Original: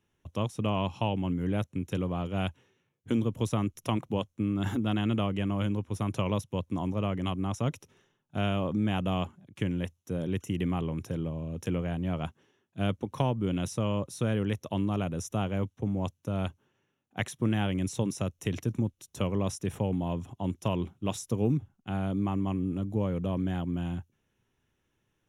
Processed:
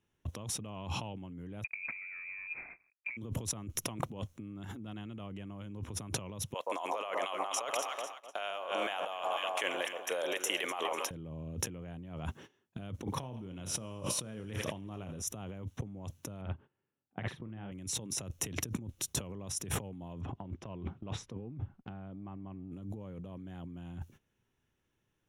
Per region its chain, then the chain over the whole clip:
1.64–3.17 CVSD 16 kbps + tilt -2.5 dB/oct + inverted band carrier 2500 Hz
6.54–11.11 HPF 600 Hz 24 dB/oct + echo with dull and thin repeats by turns 0.124 s, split 1200 Hz, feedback 71%, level -9 dB
13.04–15.22 doubler 32 ms -10 dB + thinning echo 83 ms, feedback 79%, high-pass 910 Hz, level -14 dB
16.41–17.72 air absorption 420 m + doubler 45 ms -7.5 dB + upward expander, over -35 dBFS
20.21–22.72 LPF 2300 Hz + transient shaper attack +8 dB, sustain -4 dB
whole clip: gate -56 dBFS, range -17 dB; limiter -25.5 dBFS; negative-ratio compressor -45 dBFS, ratio -1; gain +4.5 dB

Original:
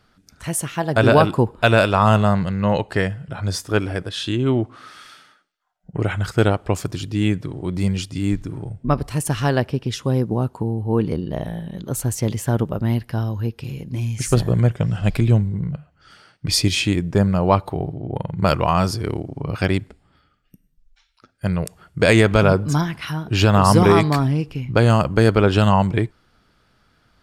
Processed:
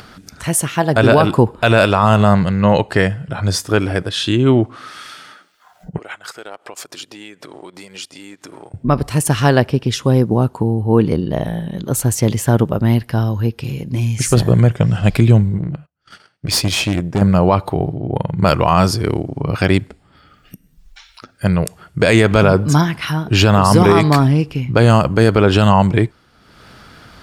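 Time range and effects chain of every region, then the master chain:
5.98–8.74 compressor 8:1, threshold -29 dBFS + HPF 540 Hz + transient shaper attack 0 dB, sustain -9 dB
15.58–17.22 gate -48 dBFS, range -26 dB + tube stage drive 17 dB, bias 0.7
whole clip: HPF 61 Hz 6 dB/oct; limiter -8.5 dBFS; upward compressor, threshold -36 dBFS; gain +7 dB

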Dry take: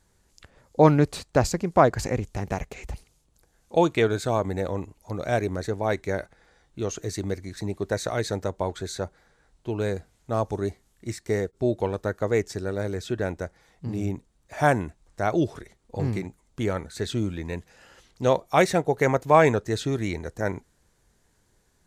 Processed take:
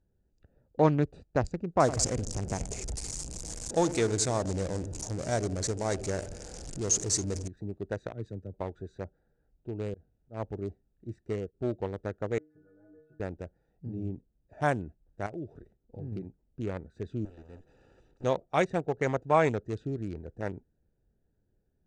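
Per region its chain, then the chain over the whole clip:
1.8–7.48 zero-crossing step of -27.5 dBFS + resonant high shelf 4400 Hz +10.5 dB, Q 1.5 + split-band echo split 1300 Hz, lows 85 ms, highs 0.274 s, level -12 dB
8.12–8.54 bell 840 Hz -12 dB 1.7 oct + three-band expander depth 100%
9.94–10.66 high shelf 6200 Hz -9 dB + auto swell 0.143 s
12.38–13.2 compressor 2:1, threshold -34 dBFS + synth low-pass 1400 Hz, resonance Q 3.7 + metallic resonator 150 Hz, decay 0.53 s, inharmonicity 0.008
15.26–16.12 switching dead time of 0.062 ms + compressor 2:1, threshold -32 dBFS
17.25–18.24 minimum comb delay 2.3 ms + spectral compressor 2:1
whole clip: Wiener smoothing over 41 samples; steep low-pass 8900 Hz 36 dB/oct; gain -6.5 dB

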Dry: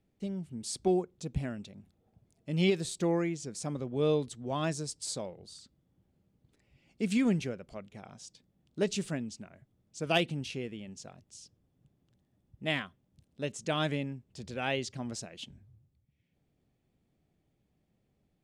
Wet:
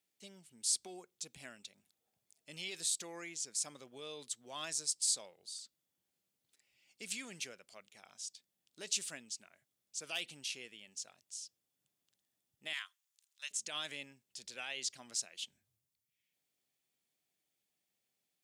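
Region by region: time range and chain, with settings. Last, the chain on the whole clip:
12.73–13.51 HPF 980 Hz 24 dB/oct + bell 6800 Hz +4.5 dB 0.33 oct
whole clip: high shelf 9700 Hz -6 dB; limiter -25 dBFS; differentiator; gain +8 dB

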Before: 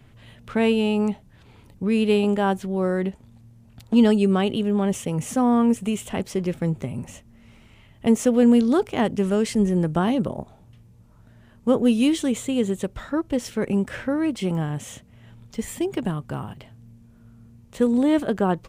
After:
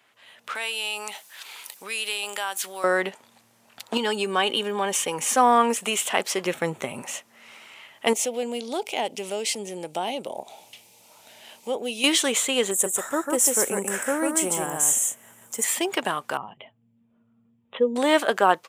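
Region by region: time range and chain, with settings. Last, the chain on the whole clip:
0.55–2.84 tilt +4.5 dB/oct + compressor 4:1, threshold -36 dBFS
3.97–5.36 notch comb 670 Hz + compressor 5:1, threshold -19 dBFS
6.45–7.02 low shelf 220 Hz +9 dB + notch 4900 Hz, Q 5.6
8.13–12.04 band shelf 1400 Hz -13.5 dB 1 oct + compressor 1.5:1, threshold -39 dBFS + mismatched tape noise reduction encoder only
12.71–15.64 EQ curve 310 Hz 0 dB, 980 Hz -5 dB, 4600 Hz -14 dB, 7400 Hz +11 dB + echo 0.146 s -3.5 dB
16.37–17.96 spectral contrast raised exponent 1.6 + bell 1500 Hz -11.5 dB 0.4 oct + careless resampling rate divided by 6×, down none, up filtered
whole clip: HPF 800 Hz 12 dB/oct; AGC gain up to 11.5 dB

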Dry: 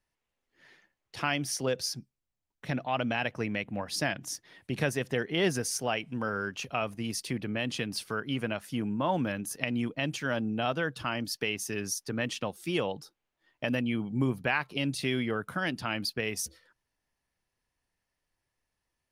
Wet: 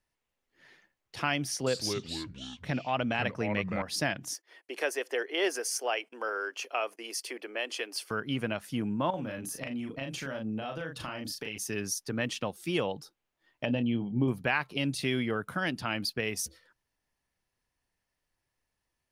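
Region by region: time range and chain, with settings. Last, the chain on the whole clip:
1.48–3.82 high shelf 11000 Hz -6 dB + echoes that change speed 0.183 s, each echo -4 st, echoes 3, each echo -6 dB
4.34–8.11 steep high-pass 350 Hz + gate -58 dBFS, range -15 dB + notch 3800 Hz, Q 7.5
9.1–11.58 bell 550 Hz +5 dB 0.23 oct + compressor, threshold -34 dBFS + doubler 37 ms -4 dB
13.65–14.28 LPF 3700 Hz 24 dB/oct + band shelf 1600 Hz -10 dB 1.3 oct + doubler 25 ms -11.5 dB
whole clip: dry

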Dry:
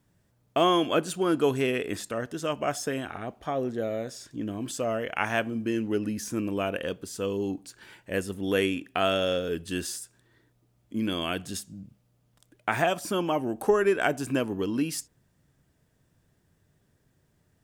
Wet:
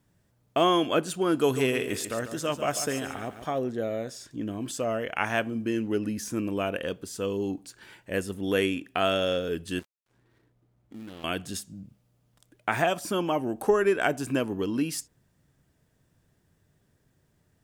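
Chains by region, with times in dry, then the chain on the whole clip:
1.35–3.59 high shelf 4900 Hz +7 dB + lo-fi delay 0.144 s, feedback 35%, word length 9-bit, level -10 dB
9.79–11.24 switching dead time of 0.21 ms + compressor 3:1, threshold -43 dBFS + mismatched tape noise reduction decoder only
whole clip: dry

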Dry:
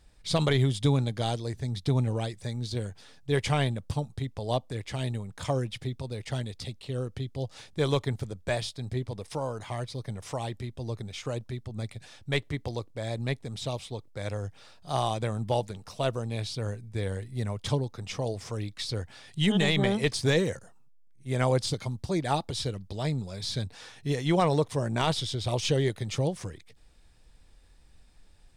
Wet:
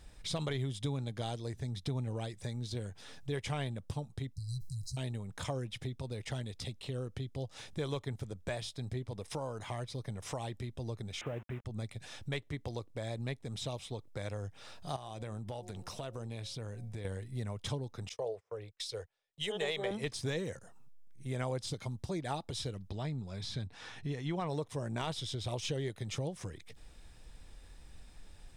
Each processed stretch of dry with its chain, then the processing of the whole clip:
4.33–4.97 brick-wall FIR band-stop 170–3900 Hz + high shelf 9200 Hz +4.5 dB + sustainer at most 64 dB/s
11.21–11.65 delta modulation 16 kbps, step -41.5 dBFS + HPF 63 Hz 6 dB/oct + companded quantiser 8-bit
14.96–17.05 de-hum 180.1 Hz, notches 5 + compressor 3:1, threshold -40 dBFS
18.09–19.91 gate -39 dBFS, range -27 dB + resonant low shelf 340 Hz -9 dB, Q 3 + three-band expander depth 100%
22.9–24.49 LPF 3100 Hz 6 dB/oct + bell 520 Hz -5 dB 0.64 oct
whole clip: compressor 2.5:1, threshold -46 dBFS; notch 4500 Hz, Q 13; gain +4.5 dB

